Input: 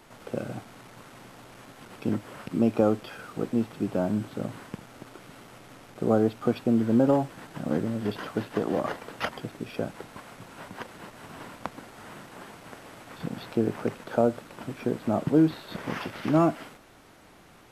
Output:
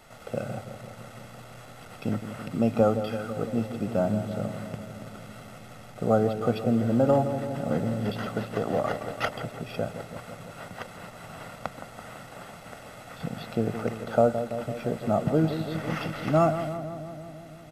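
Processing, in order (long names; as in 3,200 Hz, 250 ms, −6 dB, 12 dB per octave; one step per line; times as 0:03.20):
comb filter 1.5 ms, depth 55%
on a send: feedback echo with a low-pass in the loop 167 ms, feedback 76%, low-pass 1,400 Hz, level −9.5 dB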